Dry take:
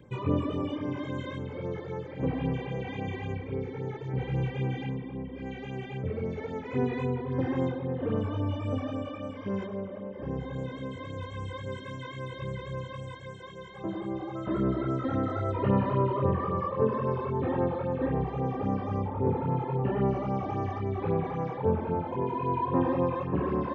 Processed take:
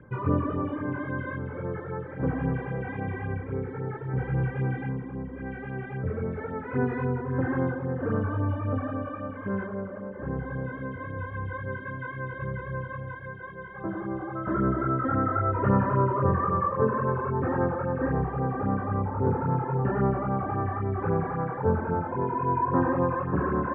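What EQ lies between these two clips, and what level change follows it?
resonant low-pass 1.5 kHz, resonance Q 4.8; distance through air 170 m; bass shelf 170 Hz +4.5 dB; 0.0 dB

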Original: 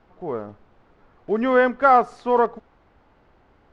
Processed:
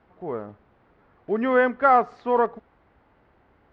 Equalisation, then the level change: high-pass 43 Hz; distance through air 150 m; peaking EQ 1.9 kHz +3 dB 0.63 oct; -2.0 dB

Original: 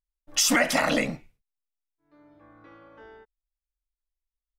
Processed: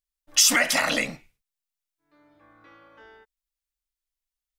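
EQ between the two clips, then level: tilt shelf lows -5.5 dB, about 1.2 kHz; 0.0 dB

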